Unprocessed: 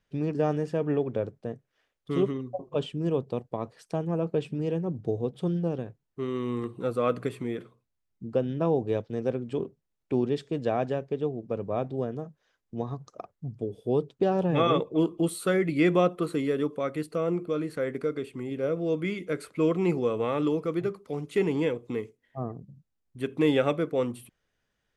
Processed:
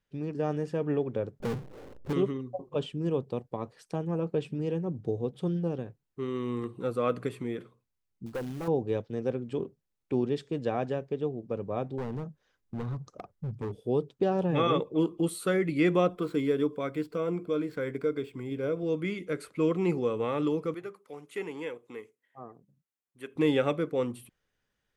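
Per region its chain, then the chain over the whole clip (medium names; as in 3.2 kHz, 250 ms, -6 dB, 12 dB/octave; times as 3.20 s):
1.40–2.13 s: inverse Chebyshev low-pass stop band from 1.9 kHz, stop band 60 dB + power-law waveshaper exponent 0.35
8.26–8.68 s: valve stage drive 27 dB, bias 0.4 + short-mantissa float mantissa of 2-bit
11.98–13.77 s: bass shelf 280 Hz +8 dB + hard clipper -28.5 dBFS
16.07–18.83 s: median filter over 5 samples + rippled EQ curve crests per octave 1.7, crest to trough 6 dB
20.74–23.36 s: high-pass 980 Hz 6 dB/octave + peaking EQ 4.5 kHz -7 dB 1.3 oct
whole clip: band-stop 660 Hz, Q 12; level rider gain up to 4 dB; trim -6 dB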